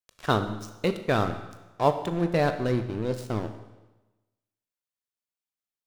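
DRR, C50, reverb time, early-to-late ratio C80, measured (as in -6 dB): 8.0 dB, 10.5 dB, 1.1 s, 12.5 dB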